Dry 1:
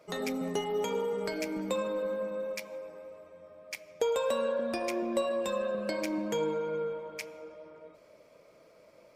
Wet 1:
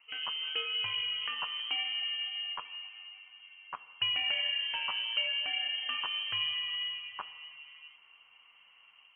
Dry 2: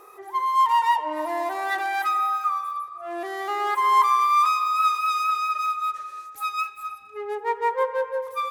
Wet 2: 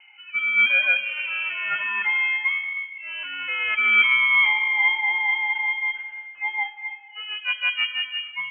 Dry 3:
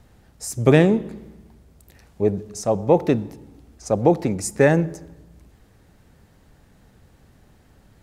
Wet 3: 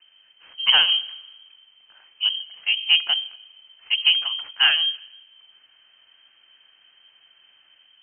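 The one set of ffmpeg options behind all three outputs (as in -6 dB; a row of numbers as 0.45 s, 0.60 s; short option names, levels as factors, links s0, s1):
-filter_complex "[0:a]acrossover=split=150|830[s0][s1][s2];[s2]dynaudnorm=f=120:g=5:m=1.78[s3];[s0][s1][s3]amix=inputs=3:normalize=0,afreqshift=-170,aeval=exprs='0.891*(cos(1*acos(clip(val(0)/0.891,-1,1)))-cos(1*PI/2))+0.126*(cos(2*acos(clip(val(0)/0.891,-1,1)))-cos(2*PI/2))+0.0355*(cos(6*acos(clip(val(0)/0.891,-1,1)))-cos(6*PI/2))':c=same,lowpass=f=2700:t=q:w=0.5098,lowpass=f=2700:t=q:w=0.6013,lowpass=f=2700:t=q:w=0.9,lowpass=f=2700:t=q:w=2.563,afreqshift=-3200,volume=0.668"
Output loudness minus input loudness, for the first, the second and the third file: +1.0 LU, +3.0 LU, +1.0 LU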